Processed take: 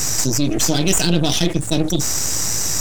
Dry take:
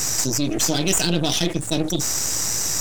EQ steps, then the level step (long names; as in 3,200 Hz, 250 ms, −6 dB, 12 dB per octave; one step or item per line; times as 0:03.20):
low-shelf EQ 190 Hz +5.5 dB
+2.0 dB